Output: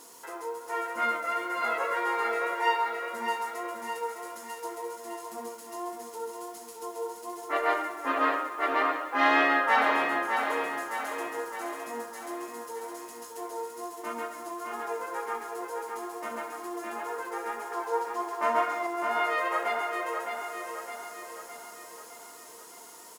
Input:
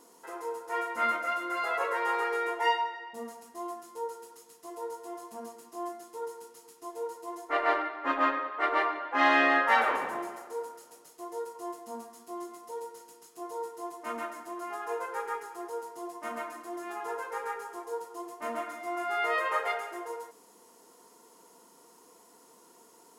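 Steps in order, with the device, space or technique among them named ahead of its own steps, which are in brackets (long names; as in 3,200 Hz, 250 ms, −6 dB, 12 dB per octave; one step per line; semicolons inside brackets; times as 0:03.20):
0:17.72–0:18.87: drawn EQ curve 260 Hz 0 dB, 980 Hz +11 dB, 5,100 Hz +5 dB, 9,600 Hz −2 dB
noise-reduction cassette on a plain deck (one half of a high-frequency compander encoder only; tape wow and flutter 21 cents; white noise bed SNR 30 dB)
repeating echo 611 ms, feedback 54%, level −5.5 dB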